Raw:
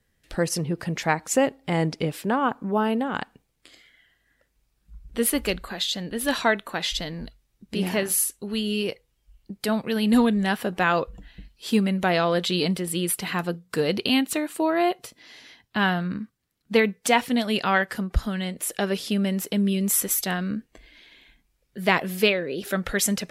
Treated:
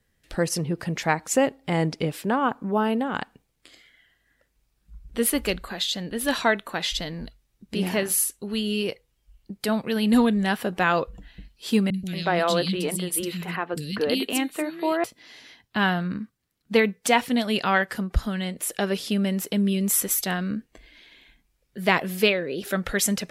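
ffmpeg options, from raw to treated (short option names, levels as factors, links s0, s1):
-filter_complex "[0:a]asettb=1/sr,asplit=3[s0][s1][s2];[s0]atrim=end=11.904[s3];[s1]atrim=start=11.9:end=15.04,asetpts=PTS-STARTPTS,afade=t=in:d=0.004:c=qsin,afade=t=out:st=3.136:d=0.004:c=qsin,acrossover=split=250|2900[s4][s5][s6];[s6]adelay=40[s7];[s5]adelay=230[s8];[s4][s8][s7]amix=inputs=3:normalize=0,atrim=end_sample=138474[s9];[s2]atrim=start=15.036[s10];[s3][s9]acrossfade=d=0.004:c1=hsin:c2=qsin[s11];[s11][s10]acrossfade=d=0.004:c1=qsin:c2=hsin"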